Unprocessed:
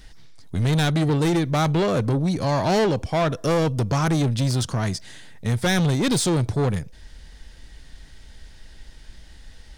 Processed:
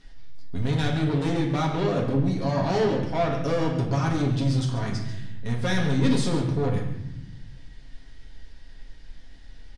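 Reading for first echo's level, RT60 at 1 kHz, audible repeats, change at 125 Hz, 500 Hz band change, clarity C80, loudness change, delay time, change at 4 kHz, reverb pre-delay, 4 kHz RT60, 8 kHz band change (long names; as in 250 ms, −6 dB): −12.0 dB, 0.85 s, 1, −3.0 dB, −3.0 dB, 7.0 dB, −3.5 dB, 139 ms, −6.0 dB, 4 ms, 0.75 s, −10.5 dB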